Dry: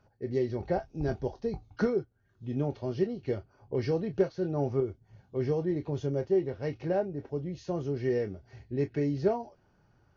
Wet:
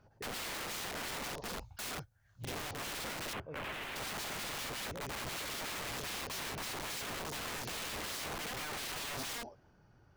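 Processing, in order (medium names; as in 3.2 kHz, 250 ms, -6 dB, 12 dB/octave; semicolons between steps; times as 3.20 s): ever faster or slower copies 111 ms, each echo +1 st, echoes 3, each echo -6 dB; 1.44–2.73 s: FFT filter 100 Hz 0 dB, 380 Hz -21 dB, 560 Hz -2 dB, 4.3 kHz +3 dB, 6.3 kHz +6 dB; peak limiter -22.5 dBFS, peak gain reduction 7 dB; integer overflow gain 37 dB; 3.33–3.96 s: resonant high shelf 3.7 kHz -11 dB, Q 1.5; trim +1 dB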